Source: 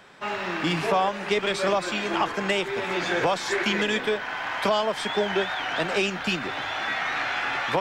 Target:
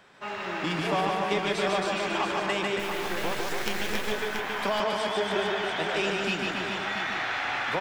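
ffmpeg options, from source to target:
ffmpeg -i in.wav -filter_complex "[0:a]asplit=2[link_01][link_02];[link_02]aecho=0:1:148:0.708[link_03];[link_01][link_03]amix=inputs=2:normalize=0,asettb=1/sr,asplit=3[link_04][link_05][link_06];[link_04]atrim=end=2.794[link_07];[link_05]atrim=start=2.79:end=4.12,asetpts=PTS-STARTPTS,afade=type=in:duration=0.004:curve=qsin,afade=type=out:start_time=1.326:duration=0.004:curve=qsin,acrusher=bits=3:dc=4:mix=0:aa=0.000001[link_08];[link_06]atrim=start=4.116[link_09];[link_07][link_08]acrossfade=duration=0.004:curve1=hsin:curve2=qsin[link_10];[link_10][link_09]acrossfade=duration=0.004:curve1=qsin:curve2=hsin,asplit=2[link_11][link_12];[link_12]aecho=0:1:276|681:0.562|0.398[link_13];[link_11][link_13]amix=inputs=2:normalize=0,volume=-5.5dB" out.wav

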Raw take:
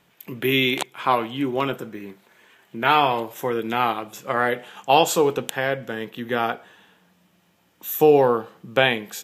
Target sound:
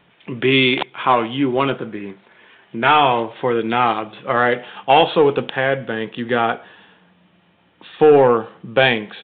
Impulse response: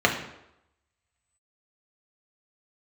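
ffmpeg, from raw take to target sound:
-af "acontrast=87,aresample=8000,aresample=44100,volume=-1dB"

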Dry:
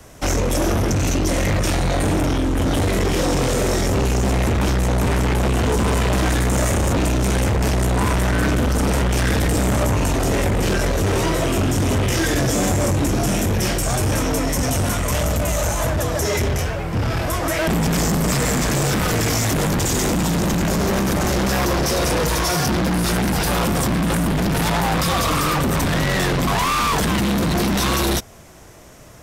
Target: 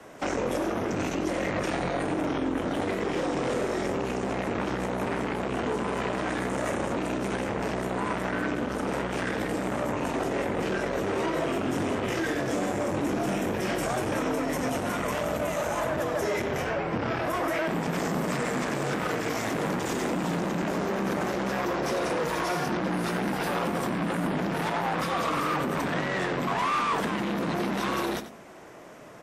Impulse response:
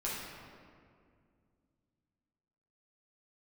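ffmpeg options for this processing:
-filter_complex "[0:a]acrossover=split=170 2800:gain=0.0891 1 0.224[link_01][link_02][link_03];[link_01][link_02][link_03]amix=inputs=3:normalize=0,bandreject=frequency=53.79:width_type=h:width=4,bandreject=frequency=107.58:width_type=h:width=4,bandreject=frequency=161.37:width_type=h:width=4,bandreject=frequency=215.16:width_type=h:width=4,bandreject=frequency=268.95:width_type=h:width=4,alimiter=limit=-19.5dB:level=0:latency=1:release=89,aecho=1:1:92:0.224" -ar 44100 -c:a wmav2 -b:a 64k

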